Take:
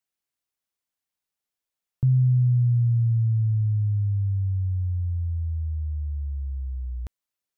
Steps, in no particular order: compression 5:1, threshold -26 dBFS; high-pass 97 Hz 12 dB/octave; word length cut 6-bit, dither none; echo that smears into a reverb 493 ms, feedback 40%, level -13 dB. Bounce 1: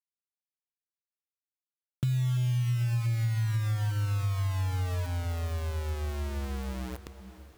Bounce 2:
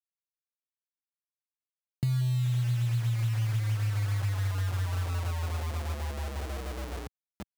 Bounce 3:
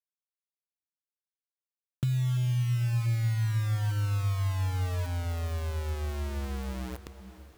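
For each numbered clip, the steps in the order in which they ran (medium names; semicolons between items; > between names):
high-pass > word length cut > echo that smears into a reverb > compression; echo that smears into a reverb > word length cut > high-pass > compression; high-pass > word length cut > compression > echo that smears into a reverb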